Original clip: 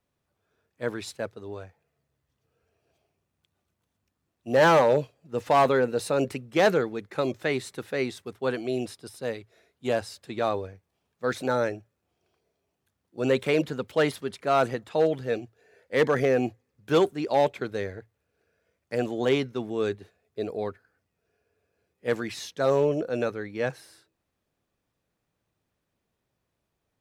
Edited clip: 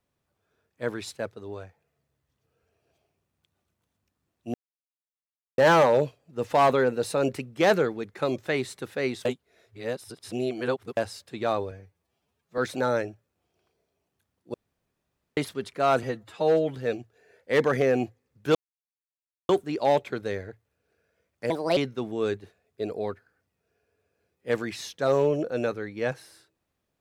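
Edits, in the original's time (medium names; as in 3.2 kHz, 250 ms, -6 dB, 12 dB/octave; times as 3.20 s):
4.54 s: insert silence 1.04 s
8.21–9.93 s: reverse
10.67–11.25 s: stretch 1.5×
13.21–14.04 s: room tone
14.70–15.18 s: stretch 1.5×
16.98 s: insert silence 0.94 s
18.99–19.35 s: speed 134%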